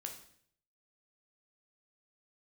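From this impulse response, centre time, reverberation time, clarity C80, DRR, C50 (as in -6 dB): 19 ms, 0.60 s, 11.5 dB, 2.5 dB, 8.0 dB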